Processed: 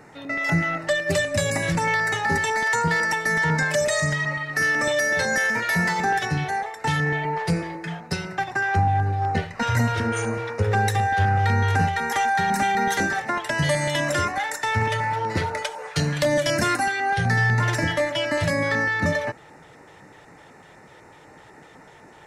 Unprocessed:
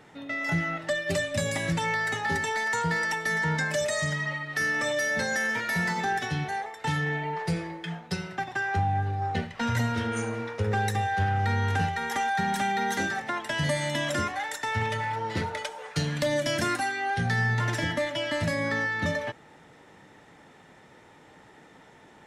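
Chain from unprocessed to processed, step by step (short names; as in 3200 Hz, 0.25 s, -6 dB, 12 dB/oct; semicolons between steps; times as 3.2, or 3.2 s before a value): LFO notch square 4 Hz 230–3300 Hz; gain +6 dB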